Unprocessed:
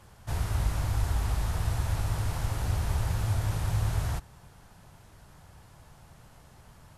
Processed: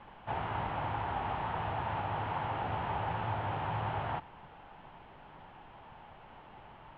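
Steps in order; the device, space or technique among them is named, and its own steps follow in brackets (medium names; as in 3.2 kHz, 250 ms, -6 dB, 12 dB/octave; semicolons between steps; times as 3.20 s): horn gramophone (band-pass 190–4200 Hz; peaking EQ 850 Hz +9.5 dB 0.53 oct; wow and flutter; pink noise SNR 20 dB); Chebyshev low-pass 3.1 kHz, order 4; trim +1 dB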